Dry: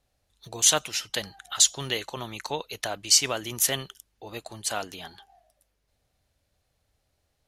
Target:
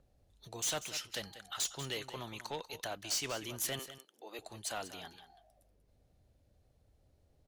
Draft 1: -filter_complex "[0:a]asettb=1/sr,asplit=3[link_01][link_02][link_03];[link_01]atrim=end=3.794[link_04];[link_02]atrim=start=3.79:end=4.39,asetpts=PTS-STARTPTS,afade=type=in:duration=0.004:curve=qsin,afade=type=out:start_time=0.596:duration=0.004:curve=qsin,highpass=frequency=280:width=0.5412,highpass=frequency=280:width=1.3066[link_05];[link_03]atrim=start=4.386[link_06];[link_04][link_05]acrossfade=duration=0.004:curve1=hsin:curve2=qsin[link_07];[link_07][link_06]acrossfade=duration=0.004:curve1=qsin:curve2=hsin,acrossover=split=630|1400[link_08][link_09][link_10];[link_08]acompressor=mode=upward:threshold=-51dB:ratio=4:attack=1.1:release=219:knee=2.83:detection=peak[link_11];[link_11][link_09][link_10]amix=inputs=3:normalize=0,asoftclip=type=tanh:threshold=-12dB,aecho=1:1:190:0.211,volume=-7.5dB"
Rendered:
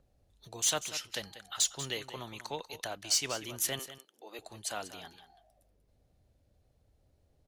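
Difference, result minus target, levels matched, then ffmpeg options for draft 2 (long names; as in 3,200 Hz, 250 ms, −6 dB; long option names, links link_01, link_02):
soft clipping: distortion −11 dB
-filter_complex "[0:a]asettb=1/sr,asplit=3[link_01][link_02][link_03];[link_01]atrim=end=3.794[link_04];[link_02]atrim=start=3.79:end=4.39,asetpts=PTS-STARTPTS,afade=type=in:duration=0.004:curve=qsin,afade=type=out:start_time=0.596:duration=0.004:curve=qsin,highpass=frequency=280:width=0.5412,highpass=frequency=280:width=1.3066[link_05];[link_03]atrim=start=4.386[link_06];[link_04][link_05]acrossfade=duration=0.004:curve1=hsin:curve2=qsin[link_07];[link_07][link_06]acrossfade=duration=0.004:curve1=qsin:curve2=hsin,acrossover=split=630|1400[link_08][link_09][link_10];[link_08]acompressor=mode=upward:threshold=-51dB:ratio=4:attack=1.1:release=219:knee=2.83:detection=peak[link_11];[link_11][link_09][link_10]amix=inputs=3:normalize=0,asoftclip=type=tanh:threshold=-23.5dB,aecho=1:1:190:0.211,volume=-7.5dB"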